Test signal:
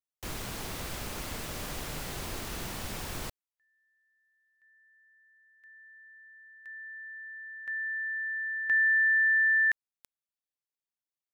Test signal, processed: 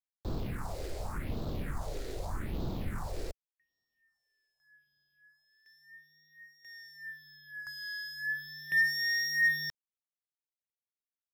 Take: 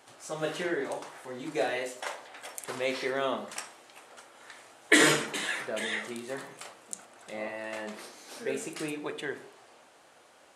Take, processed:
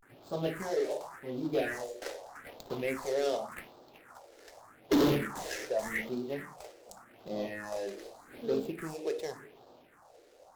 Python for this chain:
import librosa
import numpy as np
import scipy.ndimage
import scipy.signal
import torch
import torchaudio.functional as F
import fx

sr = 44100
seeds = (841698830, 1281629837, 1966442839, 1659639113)

y = scipy.signal.medfilt(x, 15)
y = fx.phaser_stages(y, sr, stages=4, low_hz=170.0, high_hz=1900.0, hz=0.85, feedback_pct=40)
y = 10.0 ** (-24.0 / 20.0) * np.tanh(y / 10.0 ** (-24.0 / 20.0))
y = fx.vibrato(y, sr, rate_hz=0.35, depth_cents=86.0)
y = F.gain(torch.from_numpy(y), 4.0).numpy()